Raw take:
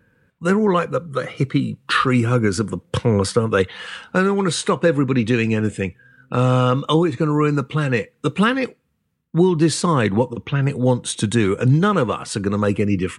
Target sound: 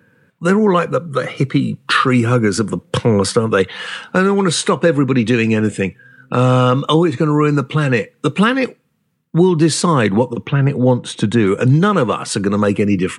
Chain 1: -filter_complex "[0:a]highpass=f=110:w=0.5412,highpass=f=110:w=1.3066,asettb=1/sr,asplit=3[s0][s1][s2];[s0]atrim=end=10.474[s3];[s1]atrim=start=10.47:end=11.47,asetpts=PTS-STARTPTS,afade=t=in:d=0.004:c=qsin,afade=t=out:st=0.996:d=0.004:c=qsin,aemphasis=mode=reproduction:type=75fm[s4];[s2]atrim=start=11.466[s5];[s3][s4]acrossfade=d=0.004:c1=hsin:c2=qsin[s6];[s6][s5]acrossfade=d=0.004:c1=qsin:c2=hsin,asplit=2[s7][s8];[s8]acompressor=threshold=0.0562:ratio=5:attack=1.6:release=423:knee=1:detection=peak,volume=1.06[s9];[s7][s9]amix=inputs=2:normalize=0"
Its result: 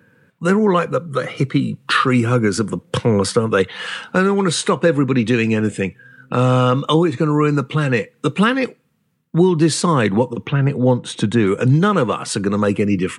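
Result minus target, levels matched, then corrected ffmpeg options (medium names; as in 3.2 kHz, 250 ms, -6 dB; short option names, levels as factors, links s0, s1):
compression: peak gain reduction +7 dB
-filter_complex "[0:a]highpass=f=110:w=0.5412,highpass=f=110:w=1.3066,asettb=1/sr,asplit=3[s0][s1][s2];[s0]atrim=end=10.474[s3];[s1]atrim=start=10.47:end=11.47,asetpts=PTS-STARTPTS,afade=t=in:d=0.004:c=qsin,afade=t=out:st=0.996:d=0.004:c=qsin,aemphasis=mode=reproduction:type=75fm[s4];[s2]atrim=start=11.466[s5];[s3][s4]acrossfade=d=0.004:c1=hsin:c2=qsin[s6];[s6][s5]acrossfade=d=0.004:c1=qsin:c2=hsin,asplit=2[s7][s8];[s8]acompressor=threshold=0.15:ratio=5:attack=1.6:release=423:knee=1:detection=peak,volume=1.06[s9];[s7][s9]amix=inputs=2:normalize=0"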